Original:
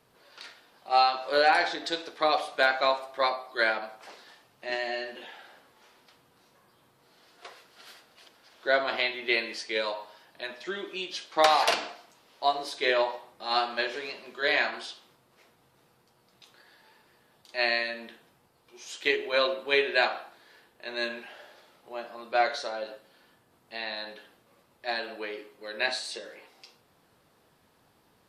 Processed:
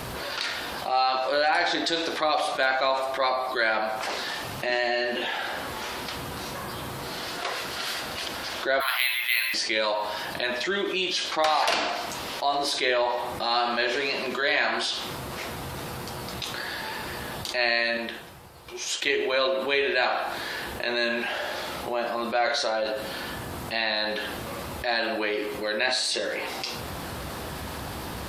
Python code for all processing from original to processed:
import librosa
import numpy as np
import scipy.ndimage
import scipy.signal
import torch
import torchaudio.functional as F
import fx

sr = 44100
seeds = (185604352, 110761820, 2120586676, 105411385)

y = fx.chain(x, sr, fx.highpass(hz=1100.0, slope=24),
    fx.resample_bad(factor=3, down='none', up='hold'), at=(8.8, 9.54))
y = fx.chain(y, sr, fx.peak_eq(hz=250.0, db=-7.5, octaves=0.33),
    fx.upward_expand(threshold_db=-52.0, expansion=2.5), at=(17.97, 19.02))
y = fx.peak_eq(y, sr, hz=66.0, db=12.5, octaves=0.79)
y = fx.notch(y, sr, hz=450.0, q=12.0)
y = fx.env_flatten(y, sr, amount_pct=70)
y = F.gain(torch.from_numpy(y), -3.5).numpy()